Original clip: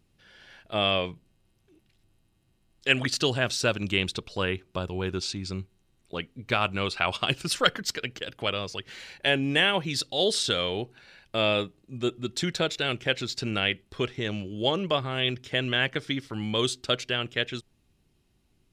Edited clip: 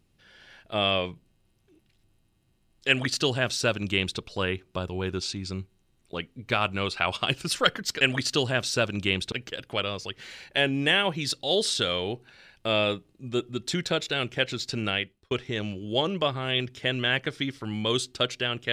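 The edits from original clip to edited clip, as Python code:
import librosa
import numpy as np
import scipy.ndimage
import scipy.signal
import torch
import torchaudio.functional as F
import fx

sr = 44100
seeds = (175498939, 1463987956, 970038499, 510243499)

y = fx.edit(x, sr, fx.duplicate(start_s=2.88, length_s=1.31, to_s=8.01),
    fx.fade_out_span(start_s=13.57, length_s=0.43), tone=tone)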